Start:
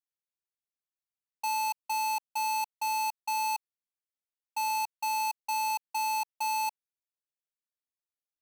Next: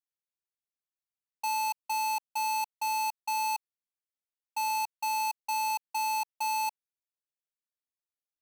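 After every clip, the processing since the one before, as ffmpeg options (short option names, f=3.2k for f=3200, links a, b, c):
-af anull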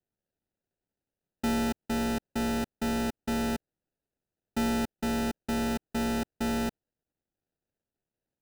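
-af "adynamicequalizer=threshold=0.00562:dfrequency=1000:dqfactor=0.77:tfrequency=1000:tqfactor=0.77:attack=5:release=100:ratio=0.375:range=3:mode=cutabove:tftype=bell,acrusher=samples=40:mix=1:aa=0.000001,volume=3.5dB"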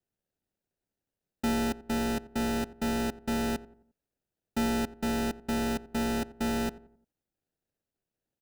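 -filter_complex "[0:a]asplit=2[a][b];[b]adelay=88,lowpass=f=1.3k:p=1,volume=-17dB,asplit=2[c][d];[d]adelay=88,lowpass=f=1.3k:p=1,volume=0.43,asplit=2[e][f];[f]adelay=88,lowpass=f=1.3k:p=1,volume=0.43,asplit=2[g][h];[h]adelay=88,lowpass=f=1.3k:p=1,volume=0.43[i];[a][c][e][g][i]amix=inputs=5:normalize=0"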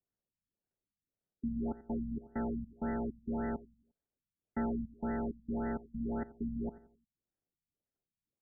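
-af "afftfilt=real='re*lt(b*sr/1024,230*pow(2100/230,0.5+0.5*sin(2*PI*1.8*pts/sr)))':imag='im*lt(b*sr/1024,230*pow(2100/230,0.5+0.5*sin(2*PI*1.8*pts/sr)))':win_size=1024:overlap=0.75,volume=-5.5dB"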